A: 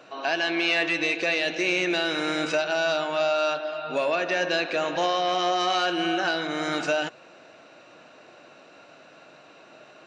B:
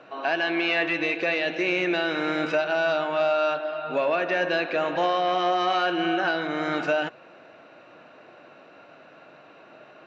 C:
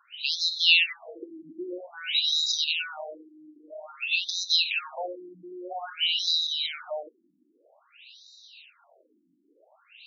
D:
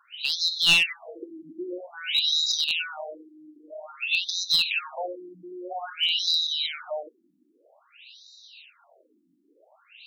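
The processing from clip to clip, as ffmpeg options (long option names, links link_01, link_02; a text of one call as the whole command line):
ffmpeg -i in.wav -af "lowpass=2200,aemphasis=mode=production:type=cd,volume=1.5dB" out.wav
ffmpeg -i in.wav -af "aexciter=amount=15:drive=7.6:freq=2800,afftfilt=real='re*between(b*sr/1024,240*pow(5200/240,0.5+0.5*sin(2*PI*0.51*pts/sr))/1.41,240*pow(5200/240,0.5+0.5*sin(2*PI*0.51*pts/sr))*1.41)':imag='im*between(b*sr/1024,240*pow(5200/240,0.5+0.5*sin(2*PI*0.51*pts/sr))/1.41,240*pow(5200/240,0.5+0.5*sin(2*PI*0.51*pts/sr))*1.41)':win_size=1024:overlap=0.75,volume=-7.5dB" out.wav
ffmpeg -i in.wav -af "aeval=exprs='clip(val(0),-1,0.141)':channel_layout=same,volume=1.5dB" out.wav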